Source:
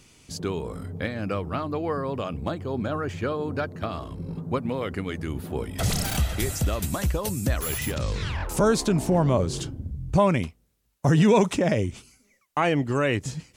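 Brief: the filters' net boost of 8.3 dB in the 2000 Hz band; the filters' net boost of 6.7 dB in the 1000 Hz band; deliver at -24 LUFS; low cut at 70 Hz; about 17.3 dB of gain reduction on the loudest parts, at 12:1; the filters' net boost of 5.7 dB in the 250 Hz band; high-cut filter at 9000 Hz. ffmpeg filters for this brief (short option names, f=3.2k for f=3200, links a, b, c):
-af "highpass=70,lowpass=9k,equalizer=f=250:t=o:g=7.5,equalizer=f=1k:t=o:g=5.5,equalizer=f=2k:t=o:g=8.5,acompressor=threshold=-27dB:ratio=12,volume=8dB"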